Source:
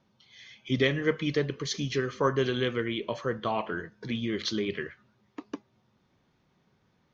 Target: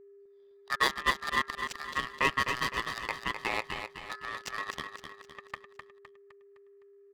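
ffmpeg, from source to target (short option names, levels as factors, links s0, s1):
-filter_complex "[0:a]highpass=220,bandreject=f=3900:w=7.8,asplit=2[s0][s1];[s1]acompressor=threshold=0.0112:ratio=6,volume=1.19[s2];[s0][s2]amix=inputs=2:normalize=0,aeval=exprs='0.266*(cos(1*acos(clip(val(0)/0.266,-1,1)))-cos(1*PI/2))+0.0335*(cos(7*acos(clip(val(0)/0.266,-1,1)))-cos(7*PI/2))':c=same,adynamicsmooth=sensitivity=7.5:basefreq=800,aeval=exprs='val(0)*sin(2*PI*1500*n/s)':c=same,aeval=exprs='val(0)+0.00251*sin(2*PI*400*n/s)':c=same,aecho=1:1:256|512|768|1024|1280:0.422|0.194|0.0892|0.041|0.0189"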